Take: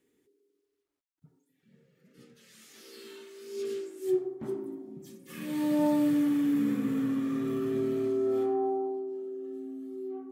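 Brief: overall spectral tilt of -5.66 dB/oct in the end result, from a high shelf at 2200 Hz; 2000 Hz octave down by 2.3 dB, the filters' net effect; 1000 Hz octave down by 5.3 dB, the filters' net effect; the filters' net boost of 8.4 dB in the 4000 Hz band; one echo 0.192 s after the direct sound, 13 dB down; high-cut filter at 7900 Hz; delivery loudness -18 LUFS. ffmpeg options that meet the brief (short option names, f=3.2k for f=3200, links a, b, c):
-af "lowpass=7.9k,equalizer=f=1k:t=o:g=-7.5,equalizer=f=2k:t=o:g=-6,highshelf=f=2.2k:g=5,equalizer=f=4k:t=o:g=8.5,aecho=1:1:192:0.224,volume=13dB"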